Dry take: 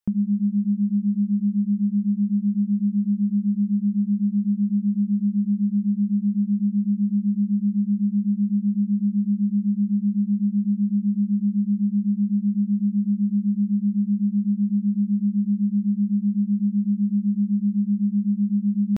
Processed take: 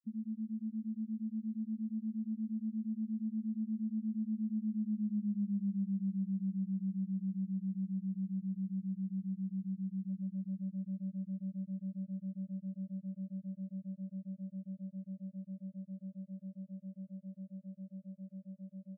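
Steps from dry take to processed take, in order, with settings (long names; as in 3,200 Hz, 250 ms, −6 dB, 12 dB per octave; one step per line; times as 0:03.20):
source passing by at 0:05.40, 24 m/s, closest 15 metres
dead-zone distortion −52.5 dBFS
spectral peaks only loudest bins 4
reversed playback
downward compressor 5 to 1, threshold −39 dBFS, peak gain reduction 18 dB
reversed playback
level +4 dB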